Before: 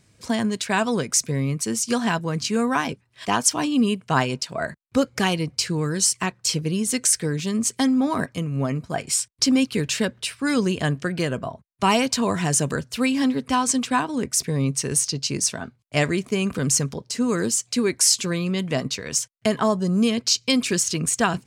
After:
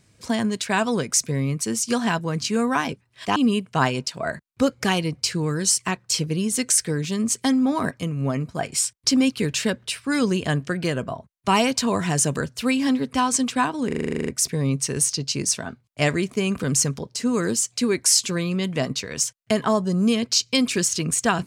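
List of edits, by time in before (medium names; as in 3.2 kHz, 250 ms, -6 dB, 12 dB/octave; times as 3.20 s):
3.36–3.71 s: delete
14.22 s: stutter 0.04 s, 11 plays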